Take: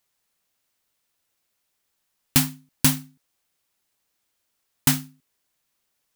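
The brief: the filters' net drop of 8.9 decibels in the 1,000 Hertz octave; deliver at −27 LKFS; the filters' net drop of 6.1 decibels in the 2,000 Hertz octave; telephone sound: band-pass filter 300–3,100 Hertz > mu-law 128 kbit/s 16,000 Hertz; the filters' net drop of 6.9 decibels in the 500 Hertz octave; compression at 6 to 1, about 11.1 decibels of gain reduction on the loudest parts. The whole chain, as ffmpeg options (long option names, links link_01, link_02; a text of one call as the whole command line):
ffmpeg -i in.wav -af "equalizer=frequency=500:width_type=o:gain=-6,equalizer=frequency=1000:width_type=o:gain=-8.5,equalizer=frequency=2000:width_type=o:gain=-4,acompressor=threshold=-26dB:ratio=6,highpass=300,lowpass=3100,volume=17.5dB" -ar 16000 -c:a pcm_mulaw out.wav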